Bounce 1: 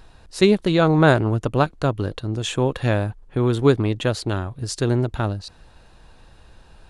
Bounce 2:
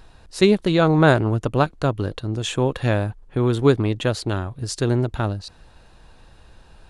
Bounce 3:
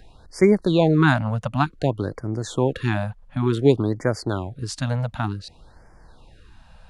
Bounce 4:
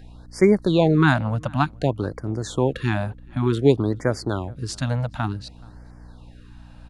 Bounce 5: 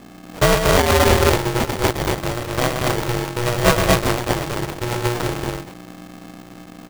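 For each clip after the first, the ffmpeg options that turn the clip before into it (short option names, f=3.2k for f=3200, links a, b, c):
-af anull
-filter_complex "[0:a]highshelf=f=6.1k:g=-6.5,acrossover=split=100|4800[a][b][c];[a]acompressor=threshold=-40dB:ratio=6[d];[d][b][c]amix=inputs=3:normalize=0,afftfilt=real='re*(1-between(b*sr/1024,320*pow(3400/320,0.5+0.5*sin(2*PI*0.55*pts/sr))/1.41,320*pow(3400/320,0.5+0.5*sin(2*PI*0.55*pts/sr))*1.41))':imag='im*(1-between(b*sr/1024,320*pow(3400/320,0.5+0.5*sin(2*PI*0.55*pts/sr))/1.41,320*pow(3400/320,0.5+0.5*sin(2*PI*0.55*pts/sr))*1.41))':win_size=1024:overlap=0.75"
-filter_complex "[0:a]aeval=exprs='val(0)+0.00708*(sin(2*PI*60*n/s)+sin(2*PI*2*60*n/s)/2+sin(2*PI*3*60*n/s)/3+sin(2*PI*4*60*n/s)/4+sin(2*PI*5*60*n/s)/5)':c=same,asplit=2[a][b];[b]adelay=425.7,volume=-26dB,highshelf=f=4k:g=-9.58[c];[a][c]amix=inputs=2:normalize=0"
-af "aecho=1:1:119.5|236.2:0.501|0.891,acrusher=samples=34:mix=1:aa=0.000001,aeval=exprs='val(0)*sgn(sin(2*PI*240*n/s))':c=same"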